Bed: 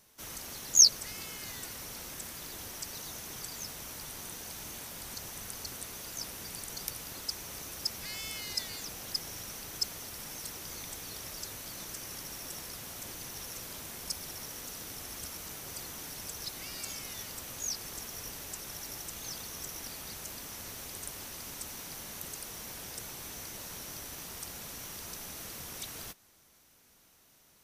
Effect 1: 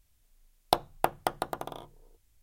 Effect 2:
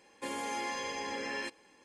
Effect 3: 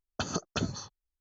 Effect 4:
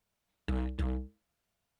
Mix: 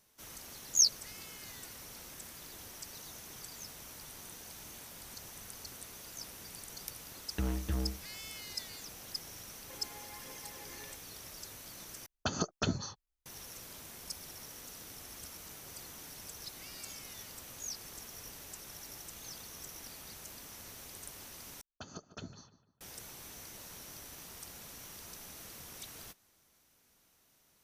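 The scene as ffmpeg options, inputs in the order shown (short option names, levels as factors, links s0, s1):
-filter_complex "[3:a]asplit=2[s0][s1];[0:a]volume=0.501[s2];[2:a]aphaser=in_gain=1:out_gain=1:delay=3:decay=0.5:speed=1.2:type=triangular[s3];[s1]asplit=2[s4][s5];[s5]adelay=150,lowpass=f=2900:p=1,volume=0.224,asplit=2[s6][s7];[s7]adelay=150,lowpass=f=2900:p=1,volume=0.4,asplit=2[s8][s9];[s9]adelay=150,lowpass=f=2900:p=1,volume=0.4,asplit=2[s10][s11];[s11]adelay=150,lowpass=f=2900:p=1,volume=0.4[s12];[s4][s6][s8][s10][s12]amix=inputs=5:normalize=0[s13];[s2]asplit=3[s14][s15][s16];[s14]atrim=end=12.064[s17];[s0]atrim=end=1.2,asetpts=PTS-STARTPTS,volume=0.891[s18];[s15]atrim=start=13.256:end=21.614[s19];[s13]atrim=end=1.2,asetpts=PTS-STARTPTS,volume=0.178[s20];[s16]atrim=start=22.806[s21];[4:a]atrim=end=1.79,asetpts=PTS-STARTPTS,volume=0.891,afade=t=in:d=0.004:c=hsin,afade=t=out:st=1.786:d=0.004:c=hsin,adelay=304290S[s22];[s3]atrim=end=1.84,asetpts=PTS-STARTPTS,volume=0.141,afade=t=in:d=0.004:c=hsin,afade=t=out:st=1.836:d=0.004:c=hsin,adelay=9470[s23];[s17][s18]acrossfade=d=0.004:c1=hsin:c2=hsin[s24];[s24][s19]acrossfade=d=0.004:c1=hsin:c2=hsin[s25];[s25][s20]acrossfade=d=0.004:c1=hsin:c2=hsin[s26];[s26][s21]acrossfade=d=0.004:c1=hsin:c2=hsin[s27];[s27][s22][s23]amix=inputs=3:normalize=0"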